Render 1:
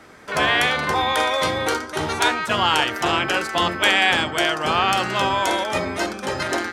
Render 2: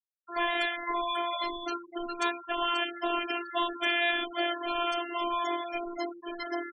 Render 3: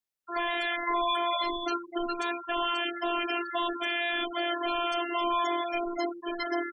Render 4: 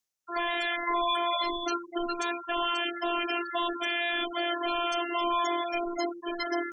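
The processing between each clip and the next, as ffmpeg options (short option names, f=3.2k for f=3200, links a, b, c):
-af "afftfilt=real='hypot(re,im)*cos(PI*b)':imag='0':win_size=512:overlap=0.75,afftfilt=real='re*gte(hypot(re,im),0.1)':imag='im*gte(hypot(re,im),0.1)':win_size=1024:overlap=0.75,volume=-6.5dB"
-af "alimiter=limit=-22.5dB:level=0:latency=1:release=24,volume=4.5dB"
-af "equalizer=f=6.2k:w=2.1:g=8.5,areverse,acompressor=mode=upward:threshold=-39dB:ratio=2.5,areverse"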